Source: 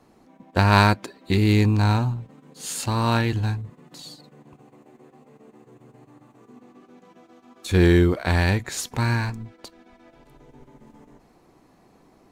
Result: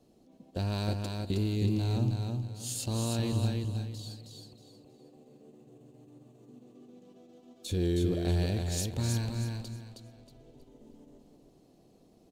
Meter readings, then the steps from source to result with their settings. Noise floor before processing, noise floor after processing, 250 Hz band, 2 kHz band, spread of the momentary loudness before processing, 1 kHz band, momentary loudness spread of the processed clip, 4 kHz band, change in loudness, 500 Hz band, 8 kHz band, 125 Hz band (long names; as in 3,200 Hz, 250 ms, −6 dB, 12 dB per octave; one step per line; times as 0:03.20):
−58 dBFS, −62 dBFS, −9.5 dB, −20.5 dB, 18 LU, −19.5 dB, 15 LU, −8.5 dB, −10.5 dB, −10.0 dB, −5.0 dB, −8.5 dB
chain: flat-topped bell 1,400 Hz −13 dB
brickwall limiter −16 dBFS, peak gain reduction 10 dB
on a send: repeating echo 317 ms, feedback 30%, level −4 dB
on the sum: level −6 dB